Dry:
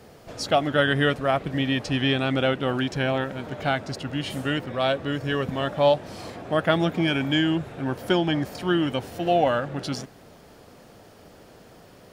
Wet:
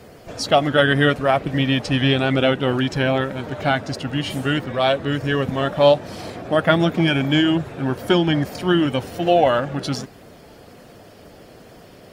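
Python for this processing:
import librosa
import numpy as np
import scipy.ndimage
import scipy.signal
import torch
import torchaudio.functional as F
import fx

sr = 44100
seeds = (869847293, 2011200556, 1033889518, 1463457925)

y = fx.spec_quant(x, sr, step_db=15)
y = y * librosa.db_to_amplitude(5.5)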